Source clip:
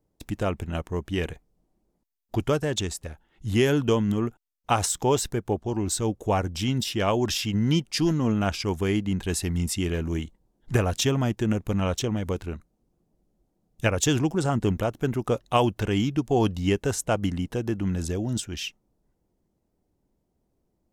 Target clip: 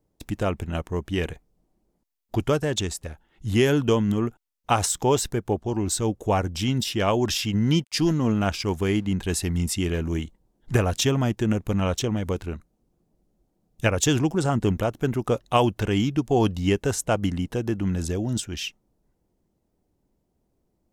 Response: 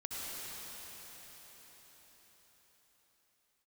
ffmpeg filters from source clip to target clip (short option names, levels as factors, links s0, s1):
-filter_complex "[0:a]asplit=3[s0][s1][s2];[s0]afade=t=out:st=7.83:d=0.02[s3];[s1]aeval=exprs='sgn(val(0))*max(abs(val(0))-0.00178,0)':c=same,afade=t=in:st=7.83:d=0.02,afade=t=out:st=9.05:d=0.02[s4];[s2]afade=t=in:st=9.05:d=0.02[s5];[s3][s4][s5]amix=inputs=3:normalize=0,volume=1.19"